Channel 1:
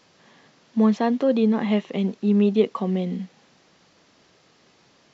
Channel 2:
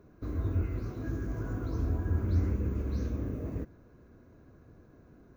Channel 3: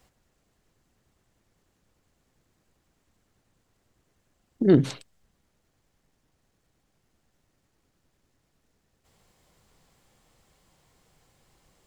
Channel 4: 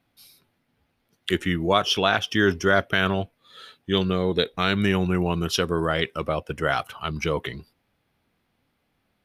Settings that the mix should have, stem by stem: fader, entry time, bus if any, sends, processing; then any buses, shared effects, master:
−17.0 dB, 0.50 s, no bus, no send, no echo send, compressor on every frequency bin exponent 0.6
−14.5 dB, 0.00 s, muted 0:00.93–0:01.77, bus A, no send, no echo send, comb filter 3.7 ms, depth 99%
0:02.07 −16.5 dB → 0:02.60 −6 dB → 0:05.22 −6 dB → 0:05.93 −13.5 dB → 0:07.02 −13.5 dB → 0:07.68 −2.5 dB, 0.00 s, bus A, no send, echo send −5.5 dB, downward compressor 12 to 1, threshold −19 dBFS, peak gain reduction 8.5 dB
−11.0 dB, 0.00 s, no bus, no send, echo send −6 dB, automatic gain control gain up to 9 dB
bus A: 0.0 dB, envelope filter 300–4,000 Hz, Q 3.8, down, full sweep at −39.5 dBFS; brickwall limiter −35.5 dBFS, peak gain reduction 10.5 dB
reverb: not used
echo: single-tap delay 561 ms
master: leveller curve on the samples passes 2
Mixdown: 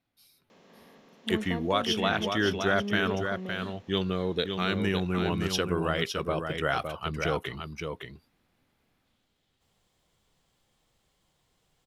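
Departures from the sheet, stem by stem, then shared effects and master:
stem 2: muted
master: missing leveller curve on the samples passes 2

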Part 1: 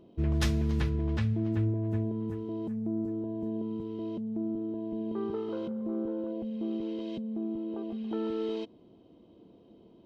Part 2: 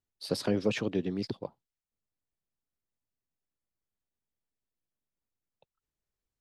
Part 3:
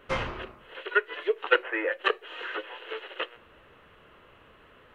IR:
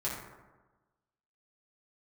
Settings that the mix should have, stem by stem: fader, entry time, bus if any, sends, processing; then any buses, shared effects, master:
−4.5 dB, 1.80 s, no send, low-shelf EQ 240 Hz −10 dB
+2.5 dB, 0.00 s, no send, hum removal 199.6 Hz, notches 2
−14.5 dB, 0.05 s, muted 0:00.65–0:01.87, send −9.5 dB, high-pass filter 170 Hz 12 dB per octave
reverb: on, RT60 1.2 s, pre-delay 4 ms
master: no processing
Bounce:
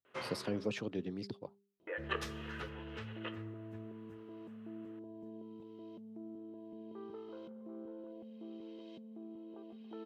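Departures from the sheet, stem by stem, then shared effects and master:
stem 1 −4.5 dB → −11.0 dB
stem 2 +2.5 dB → −8.0 dB
master: extra high-pass filter 60 Hz

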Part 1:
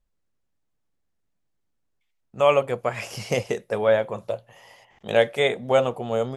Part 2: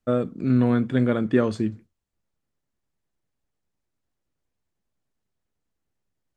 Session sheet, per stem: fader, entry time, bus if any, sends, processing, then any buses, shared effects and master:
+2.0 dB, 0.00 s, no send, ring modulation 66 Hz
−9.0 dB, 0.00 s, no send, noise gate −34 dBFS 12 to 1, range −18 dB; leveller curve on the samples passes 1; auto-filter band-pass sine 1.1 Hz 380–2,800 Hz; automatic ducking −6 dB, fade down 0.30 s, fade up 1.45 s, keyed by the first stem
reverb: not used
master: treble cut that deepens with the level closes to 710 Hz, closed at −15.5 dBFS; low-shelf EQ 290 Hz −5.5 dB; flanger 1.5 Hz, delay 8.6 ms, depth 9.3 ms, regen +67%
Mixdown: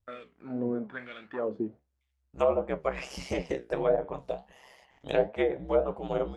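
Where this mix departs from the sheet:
stem 2 −9.0 dB → 0.0 dB
master: missing low-shelf EQ 290 Hz −5.5 dB

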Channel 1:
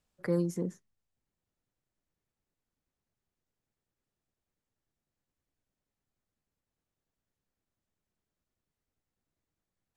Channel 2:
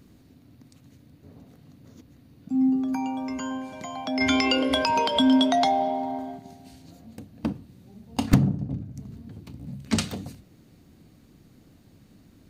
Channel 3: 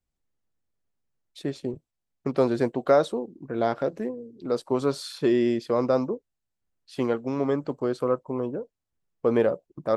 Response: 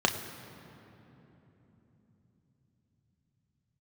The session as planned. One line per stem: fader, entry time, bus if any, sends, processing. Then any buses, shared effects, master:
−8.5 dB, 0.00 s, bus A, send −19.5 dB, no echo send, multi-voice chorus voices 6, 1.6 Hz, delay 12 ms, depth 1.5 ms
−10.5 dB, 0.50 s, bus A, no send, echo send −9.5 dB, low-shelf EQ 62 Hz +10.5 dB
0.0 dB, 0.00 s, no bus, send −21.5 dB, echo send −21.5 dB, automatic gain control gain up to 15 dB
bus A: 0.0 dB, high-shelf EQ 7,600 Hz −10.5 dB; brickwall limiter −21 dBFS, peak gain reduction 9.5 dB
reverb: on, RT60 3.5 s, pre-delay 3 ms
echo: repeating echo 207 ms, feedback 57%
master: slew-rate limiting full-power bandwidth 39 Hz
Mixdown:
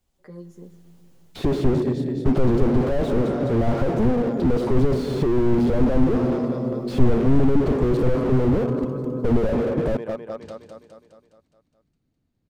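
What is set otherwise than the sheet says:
stem 2 −10.5 dB → −21.5 dB
stem 3 0.0 dB → +9.5 dB

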